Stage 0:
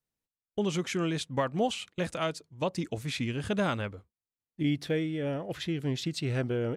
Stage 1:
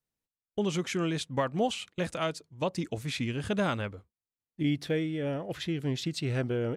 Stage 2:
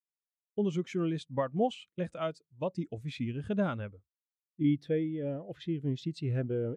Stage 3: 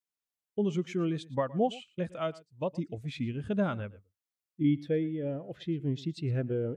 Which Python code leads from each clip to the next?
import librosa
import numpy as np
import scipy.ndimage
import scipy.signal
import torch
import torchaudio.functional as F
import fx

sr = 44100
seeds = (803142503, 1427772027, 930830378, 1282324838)

y1 = x
y2 = fx.spectral_expand(y1, sr, expansion=1.5)
y3 = y2 + 10.0 ** (-20.5 / 20.0) * np.pad(y2, (int(115 * sr / 1000.0), 0))[:len(y2)]
y3 = y3 * 10.0 ** (1.0 / 20.0)